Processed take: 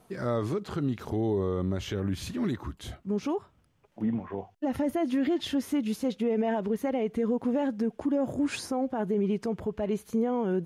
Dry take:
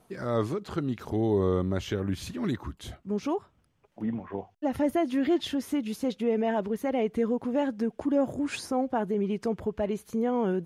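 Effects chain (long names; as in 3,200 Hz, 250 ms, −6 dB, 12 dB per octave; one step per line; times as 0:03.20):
brickwall limiter −23.5 dBFS, peak gain reduction 8 dB
harmonic and percussive parts rebalanced percussive −4 dB
level +3.5 dB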